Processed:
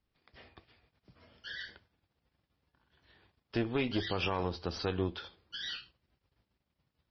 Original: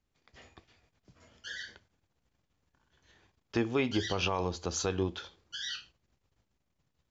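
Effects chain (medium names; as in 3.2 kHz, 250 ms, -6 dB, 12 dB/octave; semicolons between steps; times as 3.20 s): single-diode clipper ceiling -31 dBFS; band-stop 5.8 kHz, Q 8; MP3 24 kbps 24 kHz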